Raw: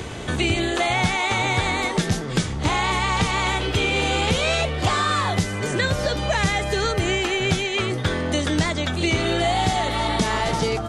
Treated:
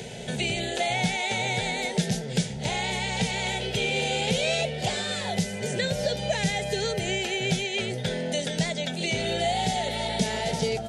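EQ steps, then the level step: high-pass 52 Hz; static phaser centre 310 Hz, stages 6; -2.0 dB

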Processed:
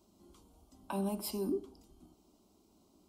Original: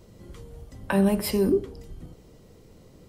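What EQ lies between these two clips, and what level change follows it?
high-pass 170 Hz 6 dB/octave; static phaser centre 490 Hz, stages 6; -8.5 dB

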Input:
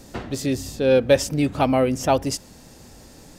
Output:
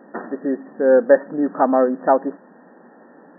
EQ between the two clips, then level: brick-wall FIR band-pass 170–1900 Hz; bass shelf 220 Hz -9 dB; +5.0 dB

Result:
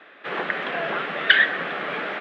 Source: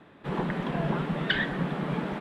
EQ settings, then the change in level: band-pass 440–2500 Hz; tilt shelf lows -7.5 dB, about 710 Hz; peaking EQ 940 Hz -11.5 dB 0.43 oct; +9.0 dB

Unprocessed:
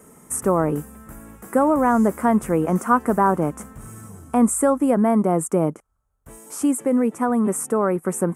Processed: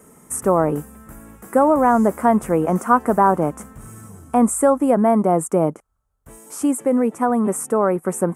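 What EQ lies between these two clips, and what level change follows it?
dynamic bell 710 Hz, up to +5 dB, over -31 dBFS, Q 1.2; 0.0 dB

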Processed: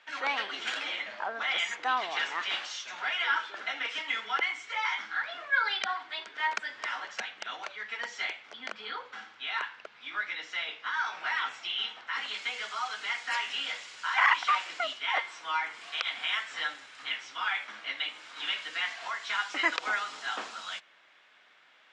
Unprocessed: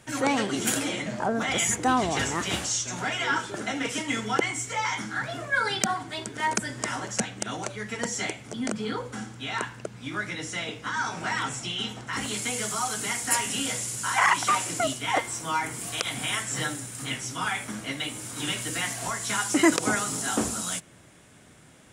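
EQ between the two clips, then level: high-pass 1.1 kHz 12 dB/octave; low-pass 4 kHz 24 dB/octave; 0.0 dB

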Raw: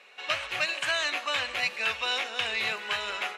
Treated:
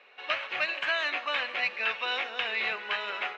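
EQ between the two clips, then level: high-pass 230 Hz 12 dB/octave; dynamic bell 2.1 kHz, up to +3 dB, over -35 dBFS, Q 1.1; distance through air 230 m; 0.0 dB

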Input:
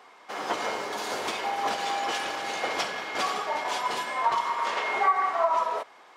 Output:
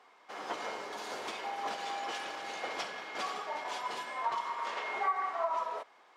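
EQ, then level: high-pass 140 Hz 6 dB/octave; treble shelf 11 kHz -8 dB; -8.5 dB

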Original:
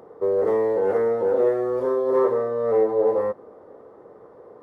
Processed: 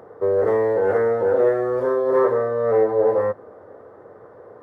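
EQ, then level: fifteen-band graphic EQ 100 Hz +10 dB, 630 Hz +4 dB, 1.6 kHz +9 dB; 0.0 dB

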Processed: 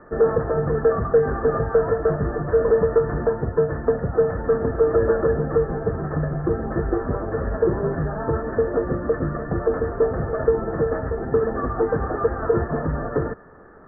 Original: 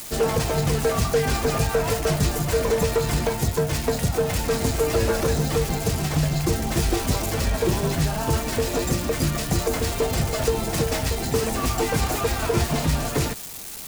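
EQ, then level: rippled Chebyshev low-pass 1.8 kHz, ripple 9 dB; +5.5 dB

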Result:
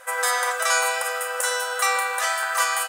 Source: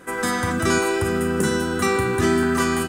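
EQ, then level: brick-wall FIR high-pass 490 Hz; treble shelf 8.7 kHz +6.5 dB; +2.0 dB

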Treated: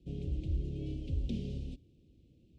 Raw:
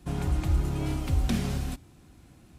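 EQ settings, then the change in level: Chebyshev band-stop 490–2900 Hz, order 3; tape spacing loss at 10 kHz 30 dB; bass shelf 490 Hz -6 dB; -2.5 dB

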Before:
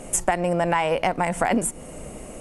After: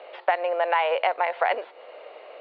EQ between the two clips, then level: steep high-pass 470 Hz 36 dB/octave; steep low-pass 4.3 kHz 96 dB/octave; 0.0 dB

